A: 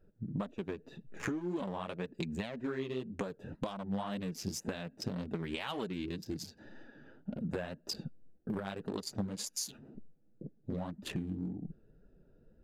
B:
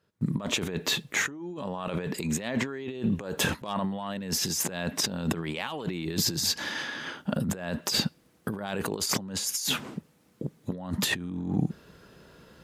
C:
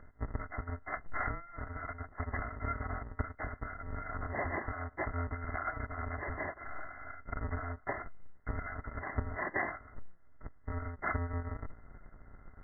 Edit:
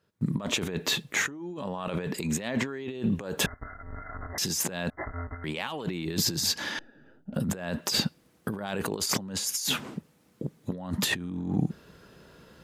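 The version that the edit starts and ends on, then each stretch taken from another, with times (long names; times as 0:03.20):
B
0:03.46–0:04.38: punch in from C
0:04.90–0:05.44: punch in from C
0:06.79–0:07.34: punch in from A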